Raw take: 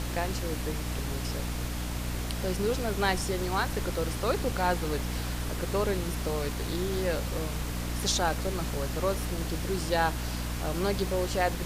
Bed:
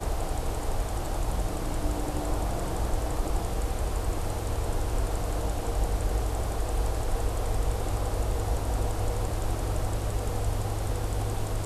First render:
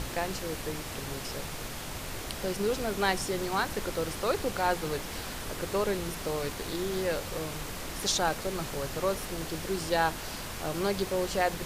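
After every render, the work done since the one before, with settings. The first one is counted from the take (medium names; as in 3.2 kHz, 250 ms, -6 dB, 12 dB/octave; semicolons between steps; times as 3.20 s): de-hum 60 Hz, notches 5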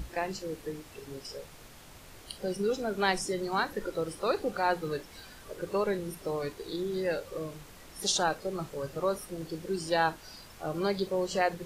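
noise print and reduce 13 dB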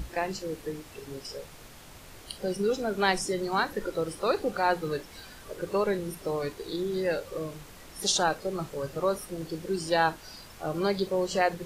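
trim +2.5 dB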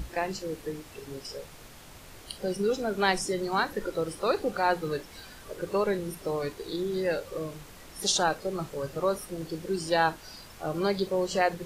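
no audible change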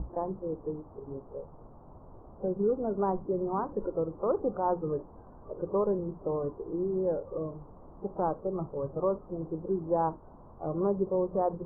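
steep low-pass 1.1 kHz 48 dB/octave; dynamic bell 750 Hz, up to -5 dB, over -39 dBFS, Q 2.8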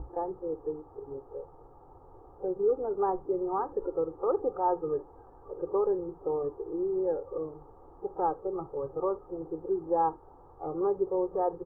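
bass shelf 280 Hz -9 dB; comb 2.4 ms, depth 78%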